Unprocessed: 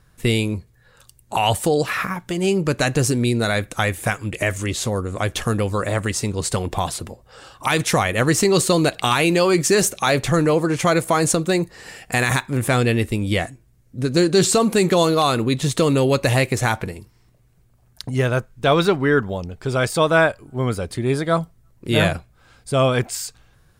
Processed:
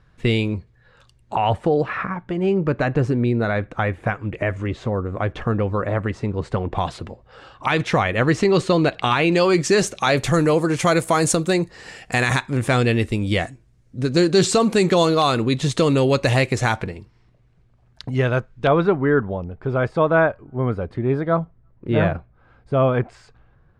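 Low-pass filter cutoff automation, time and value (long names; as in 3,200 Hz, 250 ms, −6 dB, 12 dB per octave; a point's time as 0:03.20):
3,700 Hz
from 0:01.35 1,700 Hz
from 0:06.75 3,200 Hz
from 0:09.32 5,500 Hz
from 0:10.17 11,000 Hz
from 0:11.53 6,700 Hz
from 0:16.84 3,800 Hz
from 0:18.67 1,500 Hz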